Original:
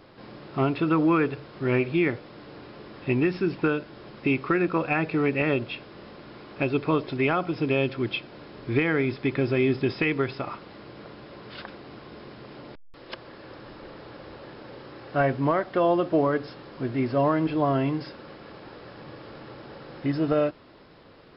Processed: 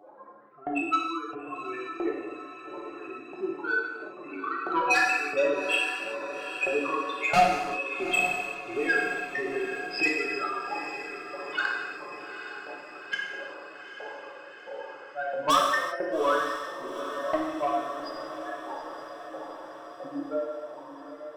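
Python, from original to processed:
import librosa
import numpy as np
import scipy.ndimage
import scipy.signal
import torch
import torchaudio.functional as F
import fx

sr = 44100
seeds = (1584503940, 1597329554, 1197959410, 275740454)

p1 = fx.spec_expand(x, sr, power=3.5)
p2 = fx.hum_notches(p1, sr, base_hz=60, count=9)
p3 = fx.filter_lfo_highpass(p2, sr, shape='saw_up', hz=1.5, low_hz=740.0, high_hz=2800.0, q=5.8)
p4 = 10.0 ** (-28.0 / 20.0) * np.tanh(p3 / 10.0 ** (-28.0 / 20.0))
p5 = p4 + fx.echo_diffused(p4, sr, ms=844, feedback_pct=63, wet_db=-10.5, dry=0)
p6 = fx.rev_gated(p5, sr, seeds[0], gate_ms=410, shape='falling', drr_db=-3.0)
y = p6 * librosa.db_to_amplitude(7.0)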